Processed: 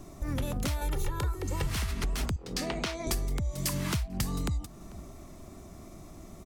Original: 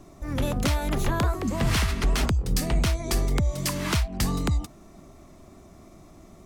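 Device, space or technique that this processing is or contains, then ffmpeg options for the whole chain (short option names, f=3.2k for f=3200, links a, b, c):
ASMR close-microphone chain: -filter_complex "[0:a]asettb=1/sr,asplit=3[a][b][c];[a]atrim=end=0.814[d];[b]atrim=start=0.81:end=1.67,asetpts=PTS-STARTPTS,afade=t=in:d=0.004:c=qsin,afade=t=out:st=0.856:d=0.004:c=qsin,aecho=1:1:2.2:0.93,atrim=end_sample=37926[e];[c]atrim=start=1.666[f];[d][e]acrossfade=d=0.004:c1=hsin:c2=qsin[g];[g][f]acrossfade=d=0.004:c1=qsin:c2=hsin,asettb=1/sr,asplit=3[h][i][j];[h]atrim=end=2.364[k];[i]atrim=start=2.36:end=3.07,asetpts=PTS-STARTPTS,afade=t=in:d=0.004:c=qsin,afade=t=out:st=0.706:d=0.004:c=qsin,acrossover=split=220 6000:gain=0.1 1 0.126[l][m][n];[l][m][n]amix=inputs=3:normalize=0[o];[j]atrim=start=3.066[p];[k][o]acrossfade=d=0.004:c1=hsin:c2=qsin[q];[q][p]acrossfade=d=0.004:c1=qsin:c2=hsin,asettb=1/sr,asplit=3[r][s][t];[r]atrim=end=3.734[u];[s]atrim=start=3.73:end=4.23,asetpts=PTS-STARTPTS,afade=t=in:d=0.004:c=qsin,afade=t=out:st=0.496:d=0.004:c=qsin,equalizer=f=130:w=1.5:g=6.5[v];[t]atrim=start=4.226[w];[u][v]acrossfade=d=0.004:c1=hsin:c2=qsin[x];[x][w]acrossfade=d=0.004:c1=qsin:c2=hsin,lowshelf=f=150:g=4,asplit=2[y][z];[z]adelay=443.1,volume=-27dB,highshelf=f=4k:g=-9.97[aa];[y][aa]amix=inputs=2:normalize=0,acompressor=threshold=-29dB:ratio=5,highshelf=f=6.7k:g=7"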